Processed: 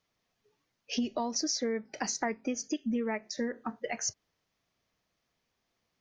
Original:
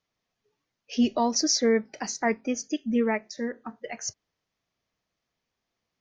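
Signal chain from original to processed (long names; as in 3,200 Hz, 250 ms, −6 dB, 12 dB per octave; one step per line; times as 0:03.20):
downward compressor 10 to 1, threshold −31 dBFS, peak gain reduction 13.5 dB
level +2.5 dB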